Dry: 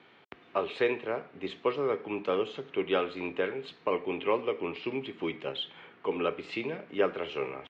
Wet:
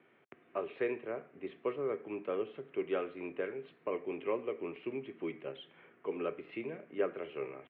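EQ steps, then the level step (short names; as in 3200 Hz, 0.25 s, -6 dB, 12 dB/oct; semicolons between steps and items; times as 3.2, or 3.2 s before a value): speaker cabinet 170–2200 Hz, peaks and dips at 190 Hz -7 dB, 280 Hz -5 dB, 470 Hz -4 dB, 860 Hz -7 dB; bell 1300 Hz -8.5 dB 2.2 oct; 0.0 dB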